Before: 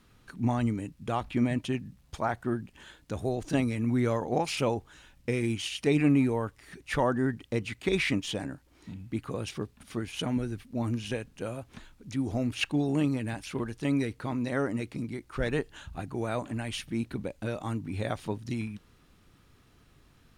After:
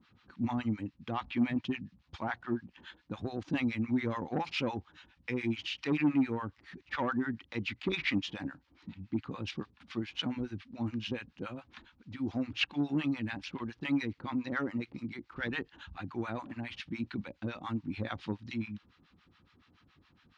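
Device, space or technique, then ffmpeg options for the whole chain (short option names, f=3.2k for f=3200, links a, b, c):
guitar amplifier with harmonic tremolo: -filter_complex "[0:a]acrossover=split=760[a][b];[a]aeval=exprs='val(0)*(1-1/2+1/2*cos(2*PI*7.1*n/s))':c=same[c];[b]aeval=exprs='val(0)*(1-1/2-1/2*cos(2*PI*7.1*n/s))':c=same[d];[c][d]amix=inputs=2:normalize=0,asoftclip=type=tanh:threshold=-22dB,highpass=85,equalizer=f=130:t=q:w=4:g=-9,equalizer=f=430:t=q:w=4:g=-9,equalizer=f=630:t=q:w=4:g=-9,lowpass=f=4.6k:w=0.5412,lowpass=f=4.6k:w=1.3066,volume=3.5dB"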